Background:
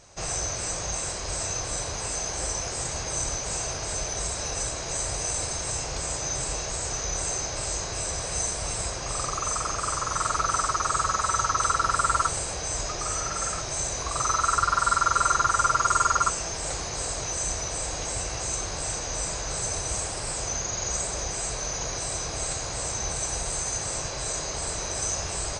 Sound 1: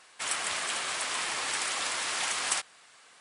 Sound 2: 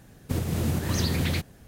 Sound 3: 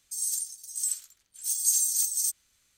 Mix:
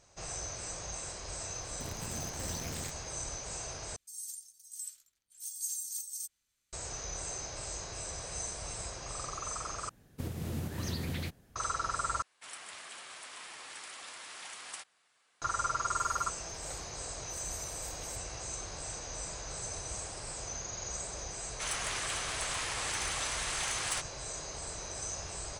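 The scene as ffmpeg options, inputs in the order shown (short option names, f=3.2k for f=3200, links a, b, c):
-filter_complex "[2:a]asplit=2[a][b];[3:a]asplit=2[c][d];[1:a]asplit=2[e][f];[0:a]volume=-10.5dB[g];[a]acrusher=bits=5:dc=4:mix=0:aa=0.000001[h];[d]highshelf=f=8.3k:g=-10[i];[f]aeval=exprs='(tanh(11.2*val(0)+0.15)-tanh(0.15))/11.2':c=same[j];[g]asplit=4[k][l][m][n];[k]atrim=end=3.964[o];[c]atrim=end=2.77,asetpts=PTS-STARTPTS,volume=-13dB[p];[l]atrim=start=6.726:end=9.894[q];[b]atrim=end=1.67,asetpts=PTS-STARTPTS,volume=-10.5dB[r];[m]atrim=start=11.556:end=12.224[s];[e]atrim=end=3.2,asetpts=PTS-STARTPTS,volume=-15dB[t];[n]atrim=start=15.416[u];[h]atrim=end=1.67,asetpts=PTS-STARTPTS,volume=-17dB,afade=t=in:d=0.004:c=hsin,afade=t=out:st=1.666:d=0.004:c=hsin,adelay=1500[v];[i]atrim=end=2.77,asetpts=PTS-STARTPTS,volume=-17dB,afade=t=in:d=0.004:c=hsin,afade=t=out:st=2.766:d=0.004:c=hsin,adelay=15860[w];[j]atrim=end=3.2,asetpts=PTS-STARTPTS,volume=-4dB,afade=t=in:d=0.004:c=hsin,afade=t=out:st=3.196:d=0.004:c=hsin,adelay=21400[x];[o][p]acrossfade=d=0.004:c1=hsin:c2=hsin[y];[y][q]acrossfade=d=0.004:c1=hsin:c2=hsin[z];[z][r]acrossfade=d=0.004:c1=hsin:c2=hsin[aa];[aa][s]acrossfade=d=0.004:c1=hsin:c2=hsin[ab];[ab][t]acrossfade=d=0.004:c1=hsin:c2=hsin[ac];[ac][u]acrossfade=d=0.004:c1=hsin:c2=hsin[ad];[ad][v][w][x]amix=inputs=4:normalize=0"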